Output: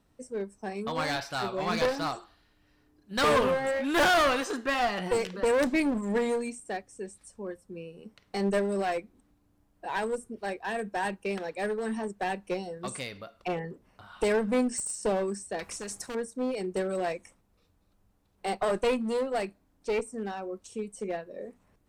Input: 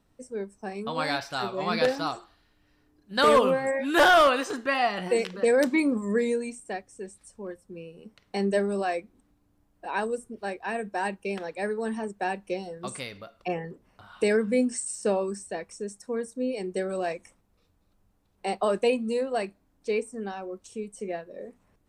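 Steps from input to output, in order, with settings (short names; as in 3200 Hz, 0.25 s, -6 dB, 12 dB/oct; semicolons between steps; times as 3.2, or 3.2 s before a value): one-sided clip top -28 dBFS; 15.59–16.15 spectral compressor 2:1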